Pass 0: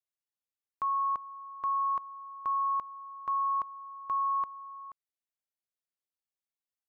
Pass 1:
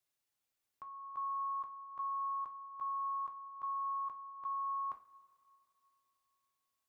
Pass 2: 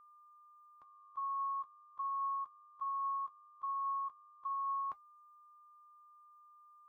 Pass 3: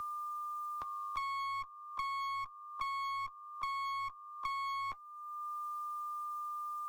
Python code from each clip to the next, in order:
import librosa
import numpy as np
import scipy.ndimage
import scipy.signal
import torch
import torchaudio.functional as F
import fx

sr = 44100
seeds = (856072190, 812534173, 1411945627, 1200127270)

y1 = fx.over_compress(x, sr, threshold_db=-42.0, ratio=-1.0)
y1 = fx.rev_double_slope(y1, sr, seeds[0], early_s=0.29, late_s=2.7, knee_db=-20, drr_db=4.0)
y1 = F.gain(torch.from_numpy(y1), -1.0).numpy()
y2 = fx.bin_expand(y1, sr, power=3.0)
y2 = y2 + 10.0 ** (-61.0 / 20.0) * np.sin(2.0 * np.pi * 1200.0 * np.arange(len(y2)) / sr)
y2 = F.gain(torch.from_numpy(y2), 2.0).numpy()
y3 = fx.clip_asym(y2, sr, top_db=-52.0, bottom_db=-36.0)
y3 = fx.band_squash(y3, sr, depth_pct=100)
y3 = F.gain(torch.from_numpy(y3), 4.5).numpy()